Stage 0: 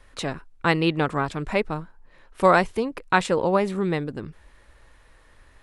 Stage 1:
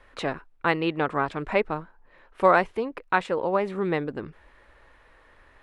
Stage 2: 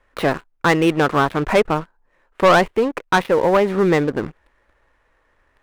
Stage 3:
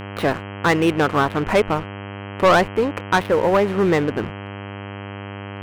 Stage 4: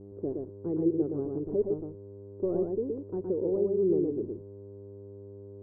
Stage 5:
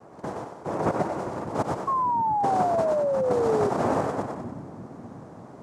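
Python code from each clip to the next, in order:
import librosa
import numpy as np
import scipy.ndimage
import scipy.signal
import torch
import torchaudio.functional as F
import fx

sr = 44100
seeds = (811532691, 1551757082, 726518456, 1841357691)

y1 = fx.bass_treble(x, sr, bass_db=-8, treble_db=-14)
y1 = fx.rider(y1, sr, range_db=4, speed_s=0.5)
y1 = y1 * librosa.db_to_amplitude(-1.5)
y2 = scipy.ndimage.median_filter(y1, 9, mode='constant')
y2 = fx.leveller(y2, sr, passes=3)
y3 = fx.dmg_buzz(y2, sr, base_hz=100.0, harmonics=32, level_db=-31.0, tilt_db=-4, odd_only=False)
y3 = y3 * librosa.db_to_amplitude(-1.5)
y4 = fx.ladder_lowpass(y3, sr, hz=420.0, resonance_pct=65)
y4 = y4 + 10.0 ** (-3.5 / 20.0) * np.pad(y4, (int(118 * sr / 1000.0), 0))[:len(y4)]
y4 = y4 * librosa.db_to_amplitude(-6.0)
y5 = fx.noise_vocoder(y4, sr, seeds[0], bands=2)
y5 = fx.echo_split(y5, sr, split_hz=300.0, low_ms=595, high_ms=94, feedback_pct=52, wet_db=-6.5)
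y5 = fx.spec_paint(y5, sr, seeds[1], shape='fall', start_s=1.87, length_s=1.83, low_hz=400.0, high_hz=1100.0, level_db=-24.0)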